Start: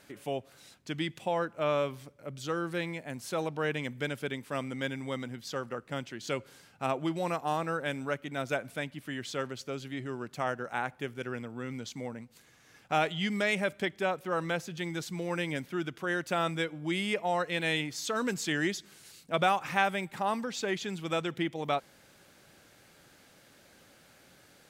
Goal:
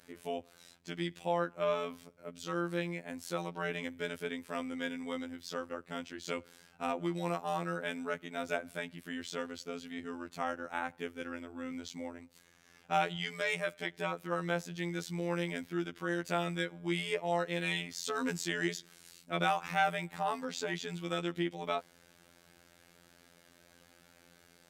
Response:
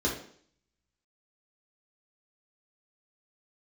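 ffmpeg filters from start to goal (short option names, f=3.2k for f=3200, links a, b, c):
-filter_complex "[0:a]asettb=1/sr,asplit=3[a][b][c];[a]atrim=end=13.164[d];[b]atrim=start=13.16:end=13.93,asetpts=PTS-STARTPTS,afade=t=in:d=0.004:c=qsin,afade=t=out:st=0.766:d=0.004:c=qsin,lowshelf=f=320:g=-8.5[e];[c]atrim=start=13.926[f];[d][e]acrossfade=d=0.004:c1=hsin:c2=qsin[g];[g][f]acrossfade=d=0.004:c1=qsin:c2=hsin,afftfilt=real='hypot(re,im)*cos(PI*b)':imag='0':win_size=2048:overlap=0.75"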